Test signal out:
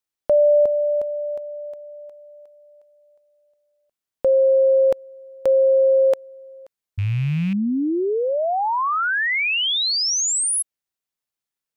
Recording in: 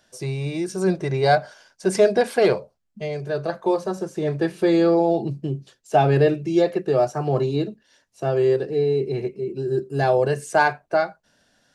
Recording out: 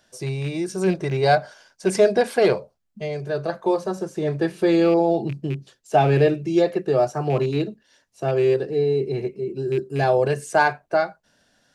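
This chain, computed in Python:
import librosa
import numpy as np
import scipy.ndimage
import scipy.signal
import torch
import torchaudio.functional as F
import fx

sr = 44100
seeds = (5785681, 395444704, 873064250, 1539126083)

y = fx.rattle_buzz(x, sr, strikes_db=-23.0, level_db=-27.0)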